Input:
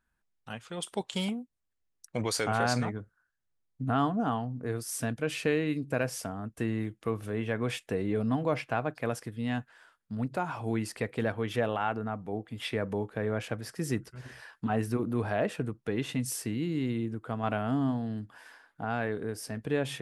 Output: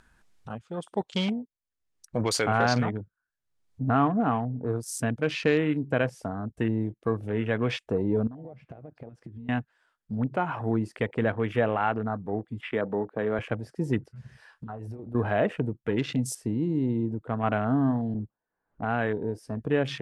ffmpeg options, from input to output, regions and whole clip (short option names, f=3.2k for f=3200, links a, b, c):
-filter_complex "[0:a]asettb=1/sr,asplit=3[a][b][c];[a]atrim=end=8.274[d];[b]atrim=start=8.27:end=9.49,asetpts=PTS-STARTPTS,afade=t=in:d=0.004:c=qsin,afade=t=out:st=1.216:d=0.004:c=qsin,lowpass=f=2k:p=1,acompressor=threshold=-42dB:ratio=12:attack=3.2:release=140:knee=1:detection=peak[e];[c]atrim=start=9.486[f];[d][e]acrossfade=d=0.004:c1=hsin:c2=qsin[g];[g][f]acrossfade=d=0.004:c1=qsin:c2=hsin,asettb=1/sr,asplit=3[h][i][j];[h]atrim=end=12.614[k];[i]atrim=start=12.61:end=13.39,asetpts=PTS-STARTPTS,afade=t=in:d=0.004:c=qsin,afade=t=out:st=0.776:d=0.004:c=qsin,highpass=170,bass=f=250:g=-1,treble=f=4k:g=-12[l];[j]atrim=start=13.386[m];[k][l]acrossfade=d=0.004:c1=hsin:c2=qsin[n];[n][m]acrossfade=d=0.004:c1=qsin:c2=hsin,asettb=1/sr,asplit=3[o][p][q];[o]atrim=end=13.994[r];[p]atrim=start=13.99:end=15.15,asetpts=PTS-STARTPTS,afade=t=in:d=0.004:c=qsin,afade=t=out:st=1.156:d=0.004:c=qsin,acompressor=threshold=-36dB:ratio=8:attack=3.2:release=140:knee=1:detection=peak,equalizer=f=250:t=o:w=1.1:g=-7,asplit=2[s][t];[t]adelay=28,volume=-12.5dB[u];[s][u]amix=inputs=2:normalize=0,atrim=end_sample=51156[v];[q]atrim=start=15.146[w];[r][v]acrossfade=d=0.004:c1=hsin:c2=qsin[x];[x][w]acrossfade=d=0.004:c1=qsin:c2=hsin,asettb=1/sr,asplit=3[y][z][aa];[y]atrim=end=18.144[ab];[z]atrim=start=18.14:end=18.85,asetpts=PTS-STARTPTS,afade=t=in:d=0.004:c=qsin,afade=t=out:st=0.706:d=0.004:c=qsin,aeval=exprs='val(0)+0.5*0.00631*sgn(val(0))':c=same,agate=range=-20dB:threshold=-40dB:ratio=16:release=100:detection=peak,adynamicsmooth=sensitivity=1.5:basefreq=690[ac];[aa]atrim=start=18.846[ad];[ab][ac]acrossfade=d=0.004:c1=hsin:c2=qsin[ae];[ae][ad]acrossfade=d=0.004:c1=qsin:c2=hsin,afwtdn=0.00794,acompressor=mode=upward:threshold=-43dB:ratio=2.5,lowpass=9.9k,volume=4.5dB"